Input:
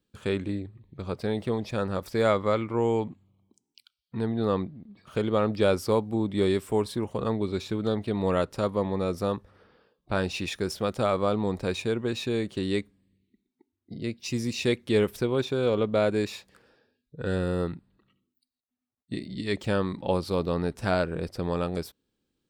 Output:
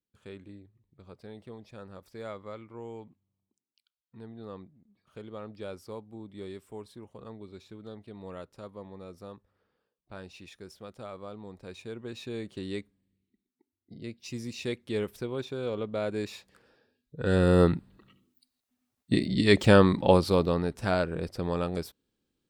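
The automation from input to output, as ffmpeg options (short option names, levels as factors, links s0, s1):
-af "volume=2.66,afade=t=in:st=11.58:d=0.89:silence=0.354813,afade=t=in:st=16:d=1.22:silence=0.375837,afade=t=in:st=17.22:d=0.42:silence=0.398107,afade=t=out:st=19.8:d=0.85:silence=0.316228"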